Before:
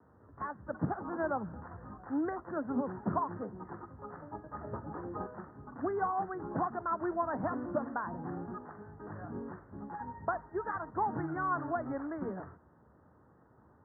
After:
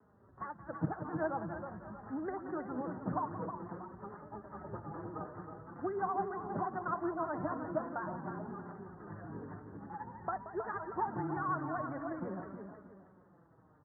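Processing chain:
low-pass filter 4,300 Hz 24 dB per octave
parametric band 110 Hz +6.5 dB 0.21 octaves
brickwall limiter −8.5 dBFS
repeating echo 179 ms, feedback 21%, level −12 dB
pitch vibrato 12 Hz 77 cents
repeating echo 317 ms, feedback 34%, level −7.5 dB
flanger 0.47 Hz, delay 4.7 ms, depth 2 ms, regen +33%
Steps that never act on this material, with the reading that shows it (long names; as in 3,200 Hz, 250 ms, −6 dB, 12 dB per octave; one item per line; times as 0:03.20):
low-pass filter 4,300 Hz: nothing at its input above 1,900 Hz
brickwall limiter −8.5 dBFS: peak of its input −18.5 dBFS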